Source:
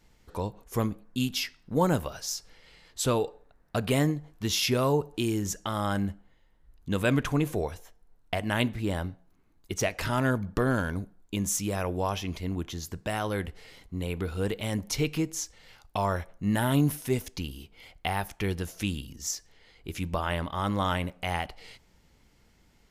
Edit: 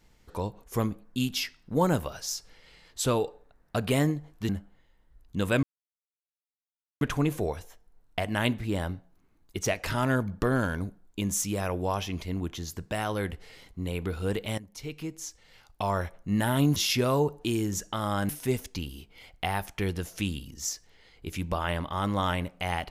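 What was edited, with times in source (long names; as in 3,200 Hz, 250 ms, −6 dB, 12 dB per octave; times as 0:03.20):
0:04.49–0:06.02: move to 0:16.91
0:07.16: splice in silence 1.38 s
0:14.73–0:16.17: fade in, from −18 dB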